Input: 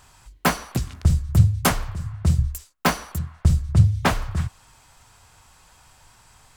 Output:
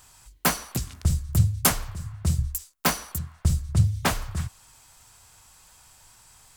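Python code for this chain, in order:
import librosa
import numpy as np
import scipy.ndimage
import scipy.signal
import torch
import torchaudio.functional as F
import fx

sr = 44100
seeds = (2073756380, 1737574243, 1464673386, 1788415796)

y = fx.dmg_crackle(x, sr, seeds[0], per_s=17.0, level_db=-48.0)
y = fx.high_shelf(y, sr, hz=4900.0, db=11.5)
y = y * 10.0 ** (-5.0 / 20.0)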